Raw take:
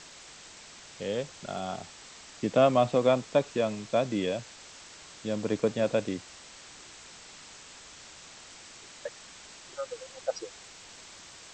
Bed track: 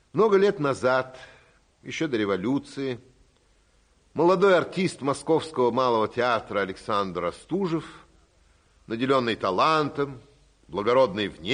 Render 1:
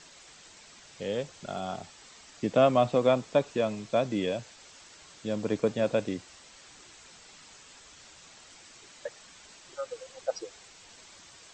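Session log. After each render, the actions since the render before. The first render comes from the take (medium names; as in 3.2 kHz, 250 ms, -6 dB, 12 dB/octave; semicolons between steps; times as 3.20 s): noise reduction 6 dB, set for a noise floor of -50 dBFS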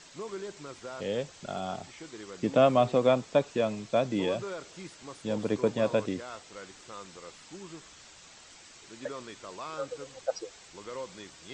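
add bed track -19.5 dB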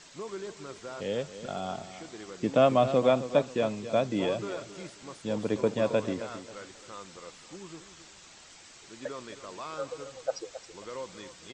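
feedback delay 269 ms, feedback 30%, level -12.5 dB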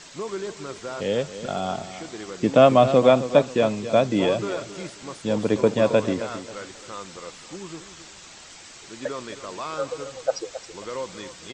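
trim +7.5 dB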